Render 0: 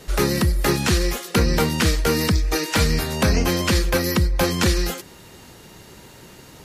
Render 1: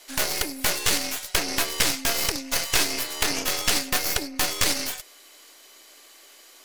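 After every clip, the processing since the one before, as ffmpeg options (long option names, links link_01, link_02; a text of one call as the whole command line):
ffmpeg -i in.wav -af "afreqshift=220,tiltshelf=frequency=970:gain=-10,aeval=exprs='1.19*(cos(1*acos(clip(val(0)/1.19,-1,1)))-cos(1*PI/2))+0.211*(cos(3*acos(clip(val(0)/1.19,-1,1)))-cos(3*PI/2))+0.211*(cos(6*acos(clip(val(0)/1.19,-1,1)))-cos(6*PI/2))':channel_layout=same,volume=-4dB" out.wav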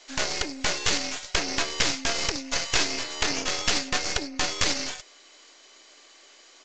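ffmpeg -i in.wav -af "aresample=16000,aresample=44100,volume=-1dB" out.wav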